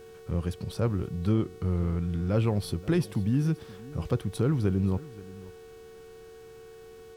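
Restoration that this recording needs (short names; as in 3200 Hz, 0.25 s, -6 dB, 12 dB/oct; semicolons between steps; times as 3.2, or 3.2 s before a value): de-hum 371.4 Hz, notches 26; notch 450 Hz, Q 30; inverse comb 0.527 s -19.5 dB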